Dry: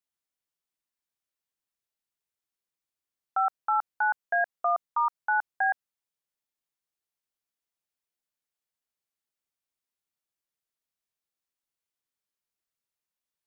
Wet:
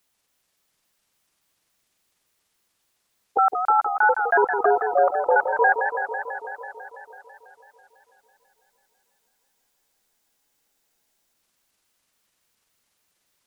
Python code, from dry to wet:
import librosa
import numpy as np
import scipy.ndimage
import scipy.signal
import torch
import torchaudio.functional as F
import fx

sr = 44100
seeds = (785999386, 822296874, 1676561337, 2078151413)

p1 = fx.pitch_trill(x, sr, semitones=-9.0, every_ms=141)
p2 = fx.over_compress(p1, sr, threshold_db=-35.0, ratio=-1.0)
p3 = p1 + F.gain(torch.from_numpy(p2), 1.0).numpy()
p4 = fx.spec_freeze(p3, sr, seeds[0], at_s=8.21, hold_s=3.14)
p5 = fx.echo_warbled(p4, sr, ms=165, feedback_pct=74, rate_hz=2.8, cents=112, wet_db=-7.5)
y = F.gain(torch.from_numpy(p5), 5.0).numpy()